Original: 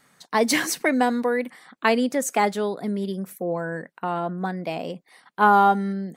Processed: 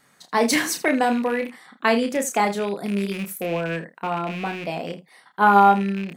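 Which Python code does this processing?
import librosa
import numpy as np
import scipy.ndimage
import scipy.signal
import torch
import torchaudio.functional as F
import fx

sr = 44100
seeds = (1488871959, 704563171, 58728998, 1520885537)

y = fx.rattle_buzz(x, sr, strikes_db=-35.0, level_db=-25.0)
y = fx.high_shelf(y, sr, hz=5900.0, db=9.5, at=(2.74, 3.43))
y = fx.room_early_taps(y, sr, ms=(30, 79), db=(-6.5, -16.0))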